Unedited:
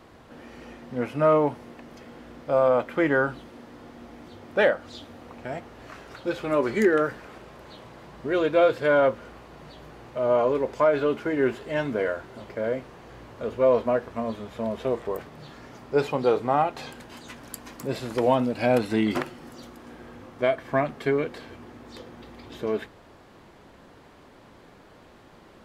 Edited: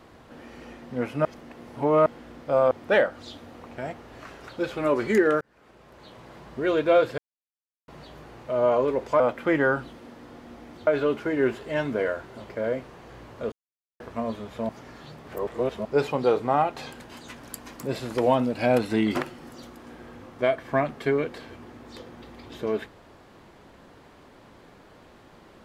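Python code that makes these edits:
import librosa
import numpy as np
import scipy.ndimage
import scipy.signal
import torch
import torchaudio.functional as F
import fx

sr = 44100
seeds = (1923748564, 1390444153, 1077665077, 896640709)

y = fx.edit(x, sr, fx.reverse_span(start_s=1.25, length_s=0.81),
    fx.move(start_s=2.71, length_s=1.67, to_s=10.87),
    fx.fade_in_span(start_s=7.08, length_s=0.92),
    fx.silence(start_s=8.85, length_s=0.7),
    fx.silence(start_s=13.52, length_s=0.48),
    fx.reverse_span(start_s=14.69, length_s=1.16), tone=tone)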